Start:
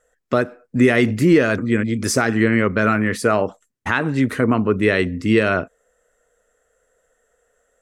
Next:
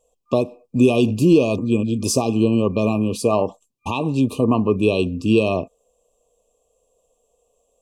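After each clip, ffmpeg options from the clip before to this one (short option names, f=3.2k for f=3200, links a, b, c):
-af "afftfilt=real='re*(1-between(b*sr/4096,1200,2400))':imag='im*(1-between(b*sr/4096,1200,2400))':win_size=4096:overlap=0.75"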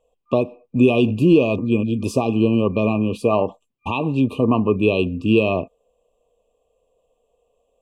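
-af "highshelf=f=3.9k:t=q:w=1.5:g=-11.5"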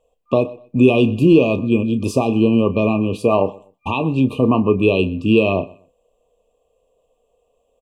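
-filter_complex "[0:a]asplit=2[a][b];[b]adelay=31,volume=-13dB[c];[a][c]amix=inputs=2:normalize=0,aecho=1:1:124|248:0.0794|0.0199,volume=2dB"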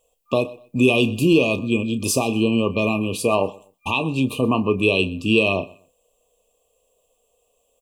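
-af "crystalizer=i=6:c=0,volume=-5dB"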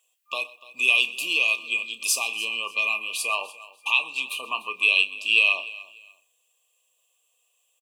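-af "highpass=f=1.7k:t=q:w=1.9,aecho=1:1:295|590:0.112|0.0281"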